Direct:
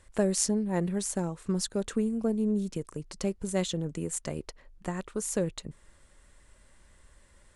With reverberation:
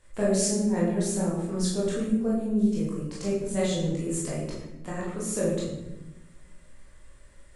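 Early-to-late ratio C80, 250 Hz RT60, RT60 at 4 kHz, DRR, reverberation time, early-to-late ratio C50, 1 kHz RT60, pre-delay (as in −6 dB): 4.5 dB, 1.5 s, 0.65 s, −7.5 dB, 1.0 s, 1.0 dB, 0.85 s, 18 ms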